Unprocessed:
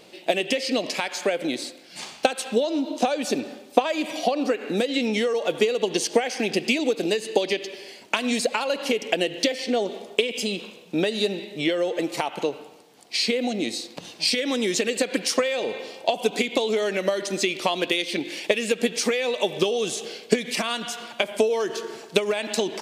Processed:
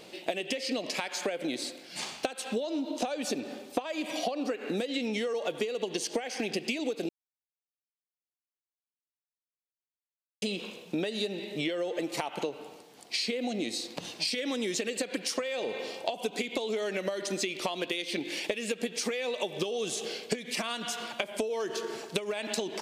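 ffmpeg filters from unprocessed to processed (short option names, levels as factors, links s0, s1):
-filter_complex "[0:a]asplit=3[s0][s1][s2];[s0]atrim=end=7.09,asetpts=PTS-STARTPTS,afade=t=out:st=7.086:d=0.004:c=hsin[s3];[s1]atrim=start=7.09:end=10.42,asetpts=PTS-STARTPTS,volume=0[s4];[s2]atrim=start=10.42,asetpts=PTS-STARTPTS,afade=t=in:d=0.004:c=hsin[s5];[s3][s4][s5]concat=n=3:v=0:a=1,acompressor=threshold=0.0316:ratio=4"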